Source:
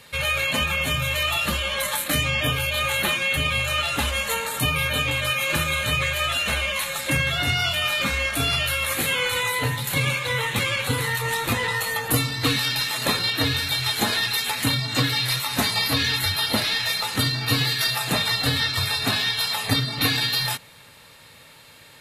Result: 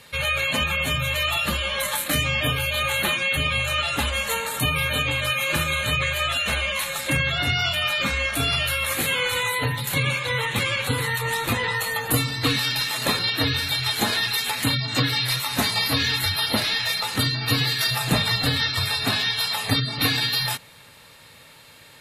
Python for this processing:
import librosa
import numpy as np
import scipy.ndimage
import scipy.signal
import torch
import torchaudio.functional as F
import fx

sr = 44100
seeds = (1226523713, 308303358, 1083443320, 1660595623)

y = fx.spec_gate(x, sr, threshold_db=-30, keep='strong')
y = fx.low_shelf(y, sr, hz=200.0, db=9.0, at=(17.91, 18.46))